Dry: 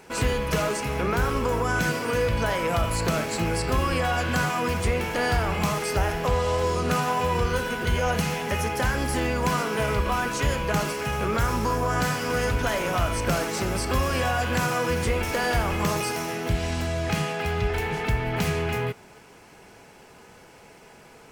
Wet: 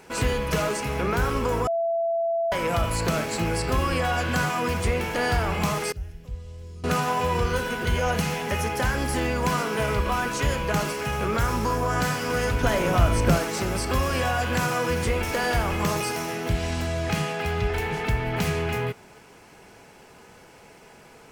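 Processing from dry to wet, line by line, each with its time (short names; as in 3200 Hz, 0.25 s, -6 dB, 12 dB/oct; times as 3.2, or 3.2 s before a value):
1.67–2.52 bleep 670 Hz -21.5 dBFS
5.92–6.84 passive tone stack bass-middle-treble 10-0-1
12.63–13.38 low shelf 500 Hz +7 dB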